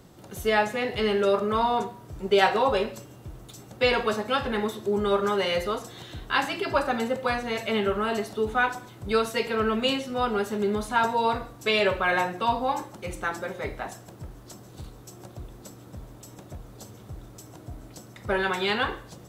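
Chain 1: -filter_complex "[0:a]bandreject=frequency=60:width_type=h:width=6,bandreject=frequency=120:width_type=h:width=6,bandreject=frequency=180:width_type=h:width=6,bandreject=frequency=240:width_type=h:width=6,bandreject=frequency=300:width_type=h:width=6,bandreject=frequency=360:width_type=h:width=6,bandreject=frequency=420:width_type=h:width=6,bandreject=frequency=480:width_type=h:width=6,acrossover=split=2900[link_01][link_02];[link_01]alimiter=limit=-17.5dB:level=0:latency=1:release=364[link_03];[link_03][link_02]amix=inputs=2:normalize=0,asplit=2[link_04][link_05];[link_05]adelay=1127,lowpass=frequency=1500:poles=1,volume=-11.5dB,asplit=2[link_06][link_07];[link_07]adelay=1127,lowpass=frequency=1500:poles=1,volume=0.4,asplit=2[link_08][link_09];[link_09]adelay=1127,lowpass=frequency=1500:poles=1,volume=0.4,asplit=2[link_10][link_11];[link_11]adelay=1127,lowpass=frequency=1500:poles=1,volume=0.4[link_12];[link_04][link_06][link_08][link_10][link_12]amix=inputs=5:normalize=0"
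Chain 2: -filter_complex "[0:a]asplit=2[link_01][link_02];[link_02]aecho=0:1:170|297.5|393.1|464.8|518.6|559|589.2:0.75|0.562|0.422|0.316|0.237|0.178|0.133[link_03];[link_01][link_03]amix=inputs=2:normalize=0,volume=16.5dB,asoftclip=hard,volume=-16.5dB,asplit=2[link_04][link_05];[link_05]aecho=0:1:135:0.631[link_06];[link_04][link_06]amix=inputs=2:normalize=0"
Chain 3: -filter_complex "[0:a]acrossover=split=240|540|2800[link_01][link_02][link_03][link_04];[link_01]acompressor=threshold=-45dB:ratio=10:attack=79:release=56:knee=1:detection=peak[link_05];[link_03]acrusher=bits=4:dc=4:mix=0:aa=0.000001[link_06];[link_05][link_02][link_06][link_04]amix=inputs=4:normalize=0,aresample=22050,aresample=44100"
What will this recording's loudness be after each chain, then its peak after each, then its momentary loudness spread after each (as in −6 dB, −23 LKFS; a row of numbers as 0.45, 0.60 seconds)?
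−28.5, −22.0, −28.0 LKFS; −13.0, −12.0, −8.0 dBFS; 18, 20, 21 LU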